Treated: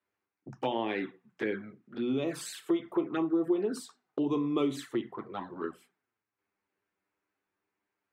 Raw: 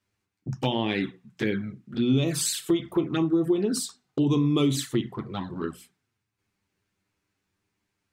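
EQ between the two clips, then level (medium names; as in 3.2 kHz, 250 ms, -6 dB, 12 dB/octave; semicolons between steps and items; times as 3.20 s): three-band isolator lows -18 dB, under 290 Hz, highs -14 dB, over 2.2 kHz; -1.5 dB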